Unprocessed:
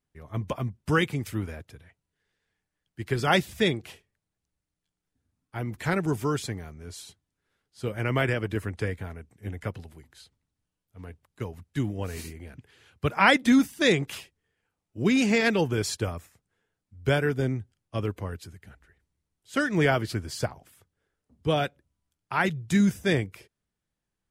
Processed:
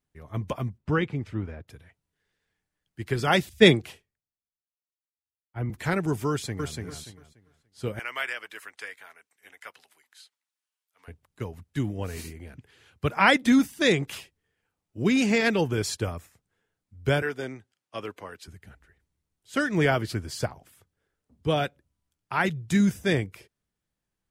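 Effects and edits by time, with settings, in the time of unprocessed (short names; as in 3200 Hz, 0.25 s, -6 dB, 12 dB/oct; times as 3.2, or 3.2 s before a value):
0.78–1.68 tape spacing loss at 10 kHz 24 dB
3.49–5.7 three-band expander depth 100%
6.3–6.74 echo throw 0.29 s, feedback 25%, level -3 dB
7.99–11.08 HPF 1200 Hz
17.22–18.48 weighting filter A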